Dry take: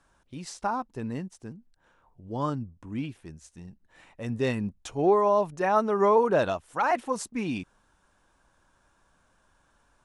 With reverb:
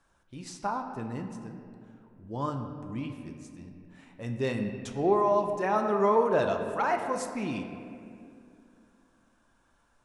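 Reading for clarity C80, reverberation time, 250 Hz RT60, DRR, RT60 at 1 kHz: 7.0 dB, 2.5 s, 3.1 s, 4.0 dB, 2.1 s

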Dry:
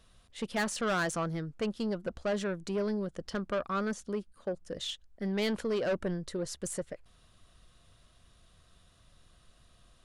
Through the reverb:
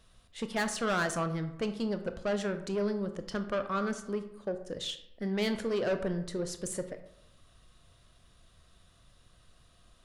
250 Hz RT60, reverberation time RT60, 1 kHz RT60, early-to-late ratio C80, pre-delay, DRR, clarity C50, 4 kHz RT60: 0.75 s, 0.85 s, 0.85 s, 13.5 dB, 20 ms, 8.5 dB, 11.0 dB, 0.45 s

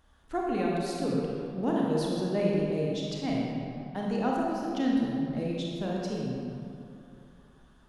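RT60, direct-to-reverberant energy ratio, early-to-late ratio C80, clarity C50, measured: 2.6 s, -3.5 dB, 0.0 dB, -2.0 dB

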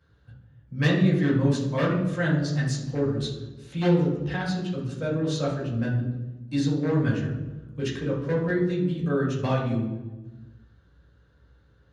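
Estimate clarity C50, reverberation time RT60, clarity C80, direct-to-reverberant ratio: 4.0 dB, 1.2 s, 8.0 dB, -4.5 dB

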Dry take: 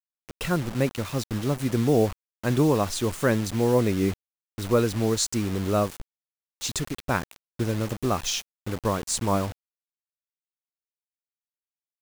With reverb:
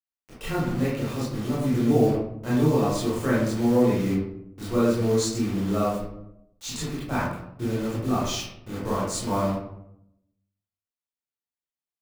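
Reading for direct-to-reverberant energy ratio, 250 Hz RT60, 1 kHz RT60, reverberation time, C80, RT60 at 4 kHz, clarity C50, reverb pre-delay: -9.5 dB, 1.0 s, 0.70 s, 0.80 s, 4.0 dB, 0.45 s, 0.0 dB, 18 ms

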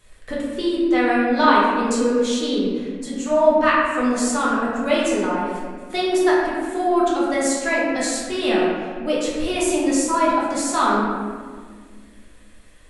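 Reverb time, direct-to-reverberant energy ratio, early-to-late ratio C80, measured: 1.7 s, -7.0 dB, 1.0 dB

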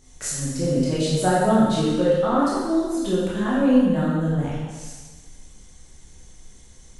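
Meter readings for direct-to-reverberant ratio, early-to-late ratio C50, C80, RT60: -8.0 dB, -1.0 dB, 1.5 dB, 1.4 s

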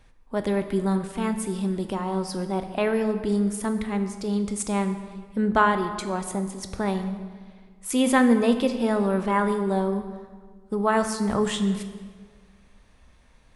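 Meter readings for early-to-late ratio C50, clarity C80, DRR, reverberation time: 9.5 dB, 10.5 dB, 7.0 dB, 1.6 s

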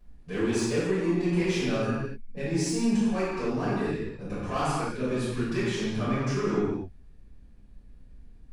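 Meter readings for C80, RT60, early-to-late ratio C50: -0.5 dB, no single decay rate, -3.5 dB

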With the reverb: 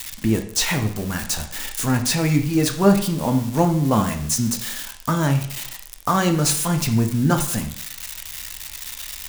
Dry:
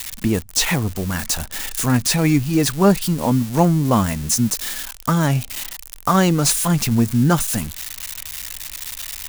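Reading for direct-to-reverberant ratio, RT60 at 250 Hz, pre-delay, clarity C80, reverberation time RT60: 5.0 dB, 0.65 s, 5 ms, 13.0 dB, 0.60 s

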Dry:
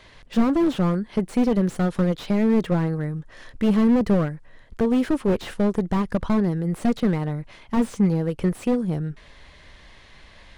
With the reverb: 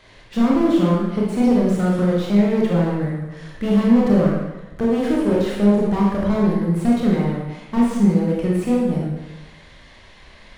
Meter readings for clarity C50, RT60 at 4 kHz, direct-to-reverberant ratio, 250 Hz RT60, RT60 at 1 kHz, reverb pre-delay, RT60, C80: 0.0 dB, 0.95 s, -4.0 dB, 1.0 s, 1.1 s, 24 ms, 1.1 s, 3.0 dB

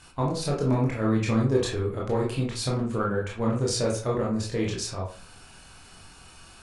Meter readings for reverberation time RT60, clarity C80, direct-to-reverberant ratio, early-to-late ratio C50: 0.40 s, 10.5 dB, -4.0 dB, 4.5 dB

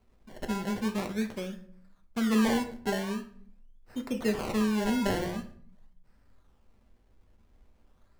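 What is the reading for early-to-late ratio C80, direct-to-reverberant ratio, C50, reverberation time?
16.0 dB, 4.5 dB, 11.5 dB, 0.55 s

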